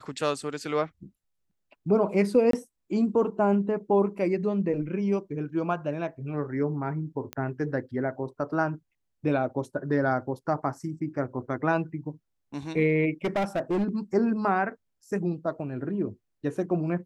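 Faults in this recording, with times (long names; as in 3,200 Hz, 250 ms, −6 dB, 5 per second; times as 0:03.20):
0:02.51–0:02.53: drop-out 23 ms
0:07.33: click −18 dBFS
0:13.24–0:13.96: clipping −22.5 dBFS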